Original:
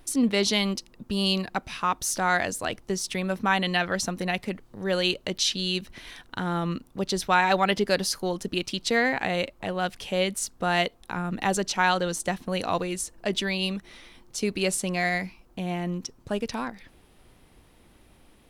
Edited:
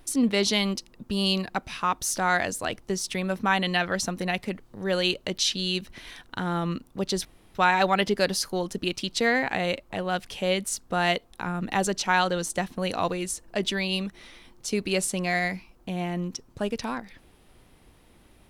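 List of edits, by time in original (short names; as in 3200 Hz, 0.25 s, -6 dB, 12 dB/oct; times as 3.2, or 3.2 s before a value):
7.25 insert room tone 0.30 s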